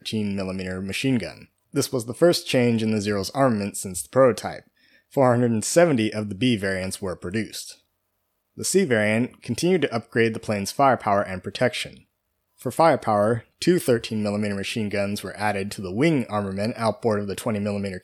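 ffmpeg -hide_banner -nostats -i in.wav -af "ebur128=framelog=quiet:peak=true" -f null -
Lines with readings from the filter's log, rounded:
Integrated loudness:
  I:         -23.1 LUFS
  Threshold: -33.6 LUFS
Loudness range:
  LRA:         3.1 LU
  Threshold: -43.4 LUFS
  LRA low:   -25.1 LUFS
  LRA high:  -22.0 LUFS
True peak:
  Peak:       -5.1 dBFS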